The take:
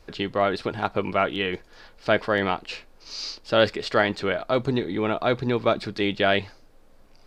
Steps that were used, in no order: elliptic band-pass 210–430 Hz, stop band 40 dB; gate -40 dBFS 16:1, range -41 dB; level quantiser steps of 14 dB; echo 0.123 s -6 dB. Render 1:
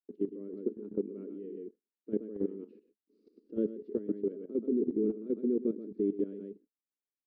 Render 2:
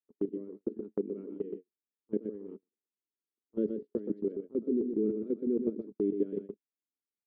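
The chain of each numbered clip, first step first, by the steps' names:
echo > gate > elliptic band-pass > level quantiser; elliptic band-pass > level quantiser > echo > gate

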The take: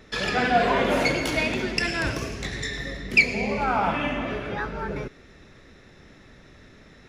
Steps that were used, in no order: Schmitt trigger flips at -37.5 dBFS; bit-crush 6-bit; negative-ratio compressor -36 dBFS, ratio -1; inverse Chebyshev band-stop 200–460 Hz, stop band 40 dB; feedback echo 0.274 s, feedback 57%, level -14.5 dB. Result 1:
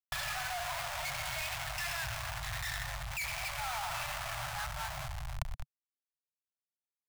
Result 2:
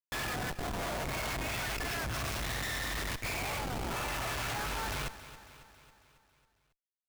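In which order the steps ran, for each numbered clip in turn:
feedback echo > Schmitt trigger > bit-crush > negative-ratio compressor > inverse Chebyshev band-stop; bit-crush > inverse Chebyshev band-stop > negative-ratio compressor > Schmitt trigger > feedback echo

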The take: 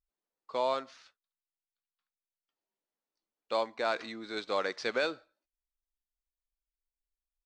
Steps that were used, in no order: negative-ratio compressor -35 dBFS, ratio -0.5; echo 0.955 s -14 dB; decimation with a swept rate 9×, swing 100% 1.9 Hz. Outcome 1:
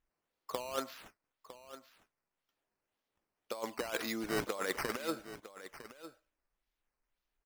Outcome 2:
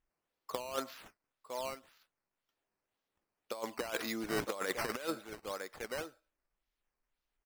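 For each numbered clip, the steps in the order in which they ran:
negative-ratio compressor > decimation with a swept rate > echo; echo > negative-ratio compressor > decimation with a swept rate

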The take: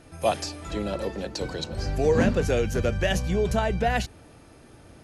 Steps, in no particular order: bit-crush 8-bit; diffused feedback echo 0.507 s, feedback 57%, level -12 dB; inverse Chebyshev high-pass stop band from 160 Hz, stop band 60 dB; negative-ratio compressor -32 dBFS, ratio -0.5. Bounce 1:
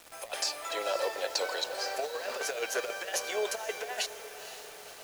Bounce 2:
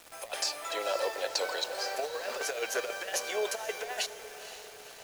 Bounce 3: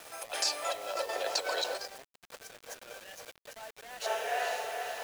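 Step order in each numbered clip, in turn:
inverse Chebyshev high-pass > negative-ratio compressor > diffused feedback echo > bit-crush; inverse Chebyshev high-pass > negative-ratio compressor > bit-crush > diffused feedback echo; diffused feedback echo > negative-ratio compressor > inverse Chebyshev high-pass > bit-crush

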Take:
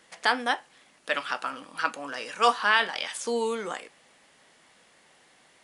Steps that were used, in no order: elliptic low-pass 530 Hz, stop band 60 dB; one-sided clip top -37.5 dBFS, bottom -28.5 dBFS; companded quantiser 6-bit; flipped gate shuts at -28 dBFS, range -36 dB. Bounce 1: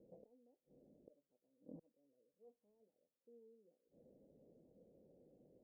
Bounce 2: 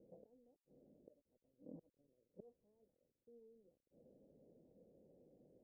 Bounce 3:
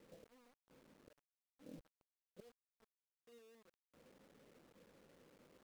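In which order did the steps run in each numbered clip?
companded quantiser > flipped gate > elliptic low-pass > one-sided clip; flipped gate > companded quantiser > elliptic low-pass > one-sided clip; flipped gate > one-sided clip > elliptic low-pass > companded quantiser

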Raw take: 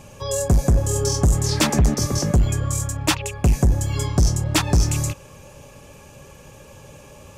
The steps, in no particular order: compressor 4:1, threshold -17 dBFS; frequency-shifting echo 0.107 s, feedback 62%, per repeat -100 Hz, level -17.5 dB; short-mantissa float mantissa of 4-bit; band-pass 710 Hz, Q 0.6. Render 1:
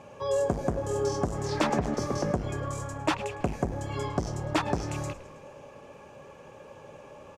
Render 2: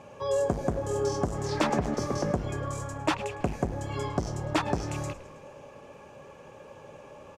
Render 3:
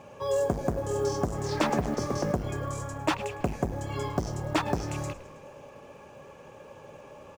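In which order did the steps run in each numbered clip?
short-mantissa float > compressor > band-pass > frequency-shifting echo; compressor > short-mantissa float > band-pass > frequency-shifting echo; compressor > band-pass > frequency-shifting echo > short-mantissa float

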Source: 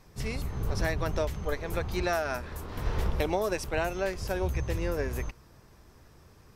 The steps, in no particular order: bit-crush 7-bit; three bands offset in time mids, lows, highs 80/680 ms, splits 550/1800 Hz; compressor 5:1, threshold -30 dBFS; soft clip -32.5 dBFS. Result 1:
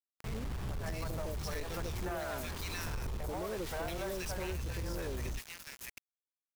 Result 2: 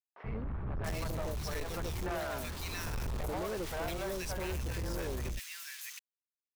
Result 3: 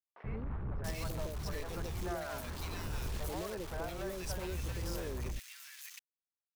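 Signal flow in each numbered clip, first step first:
three bands offset in time > bit-crush > compressor > soft clip; bit-crush > three bands offset in time > soft clip > compressor; bit-crush > compressor > soft clip > three bands offset in time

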